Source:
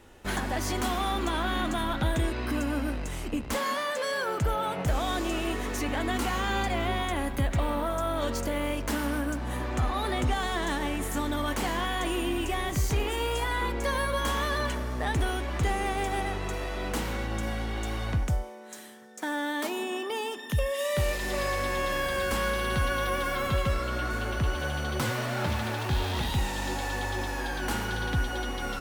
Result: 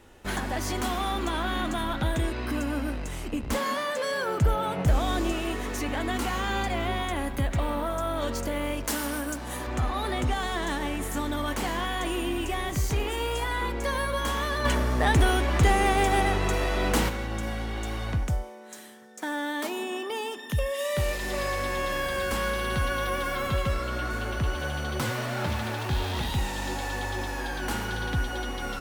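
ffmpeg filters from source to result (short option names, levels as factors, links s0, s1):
-filter_complex "[0:a]asettb=1/sr,asplit=3[s0][s1][s2];[s0]atrim=end=3.434[s3];[s1]atrim=start=3.43:end=5.32,asetpts=PTS-STARTPTS,afade=t=in:d=0.004:c=qsin,afade=t=out:st=1.886:d=0.004:c=qsin,lowshelf=f=340:g=6[s4];[s2]atrim=start=5.316[s5];[s3][s4]acrossfade=d=0.004:c1=hsin:c2=qsin[s6];[s6][s5]acrossfade=d=0.004:c1=qsin:c2=hsin,asettb=1/sr,asplit=3[s7][s8][s9];[s7]atrim=end=8.844[s10];[s8]atrim=start=8.84:end=9.67,asetpts=PTS-STARTPTS,afade=t=in:d=0.004:c=qsin,afade=t=out:st=0.826:d=0.004:c=qsin,bass=f=250:g=-6,treble=f=4000:g=8[s11];[s9]atrim=start=9.666[s12];[s10][s11]acrossfade=d=0.004:c1=hsin:c2=qsin[s13];[s13][s12]acrossfade=d=0.004:c1=qsin:c2=hsin,asplit=3[s14][s15][s16];[s14]afade=t=out:st=14.64:d=0.02[s17];[s15]acontrast=77,afade=t=in:st=14.64:d=0.02,afade=t=out:st=17.08:d=0.02[s18];[s16]afade=t=in:st=17.08:d=0.02[s19];[s17][s18][s19]amix=inputs=3:normalize=0"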